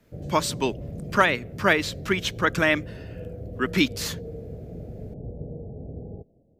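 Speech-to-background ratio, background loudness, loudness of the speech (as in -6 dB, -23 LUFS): 13.5 dB, -38.0 LUFS, -24.5 LUFS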